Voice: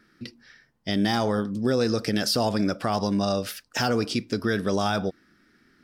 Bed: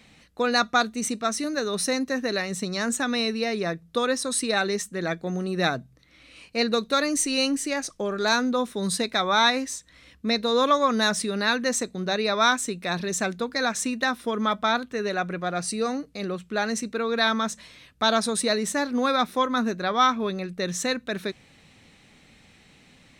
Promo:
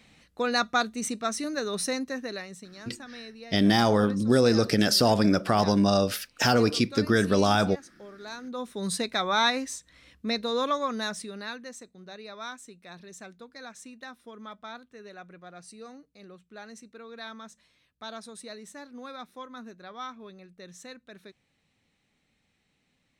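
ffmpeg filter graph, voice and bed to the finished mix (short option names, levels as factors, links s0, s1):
-filter_complex "[0:a]adelay=2650,volume=1.33[s0];[1:a]volume=3.55,afade=t=out:st=1.83:d=0.85:silence=0.188365,afade=t=in:st=8.41:d=0.48:silence=0.188365,afade=t=out:st=10.08:d=1.66:silence=0.177828[s1];[s0][s1]amix=inputs=2:normalize=0"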